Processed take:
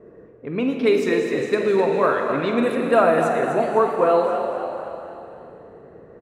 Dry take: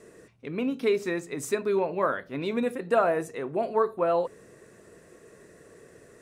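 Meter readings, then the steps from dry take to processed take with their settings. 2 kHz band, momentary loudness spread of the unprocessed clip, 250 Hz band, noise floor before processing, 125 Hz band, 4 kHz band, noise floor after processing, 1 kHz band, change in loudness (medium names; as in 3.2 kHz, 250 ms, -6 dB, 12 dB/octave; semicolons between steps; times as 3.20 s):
+8.0 dB, 8 LU, +8.0 dB, -54 dBFS, +7.5 dB, +7.5 dB, -46 dBFS, +8.5 dB, +7.5 dB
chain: level-controlled noise filter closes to 860 Hz, open at -22.5 dBFS; frequency-shifting echo 254 ms, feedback 48%, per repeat +44 Hz, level -9 dB; Schroeder reverb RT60 2.9 s, DRR 4 dB; trim +6 dB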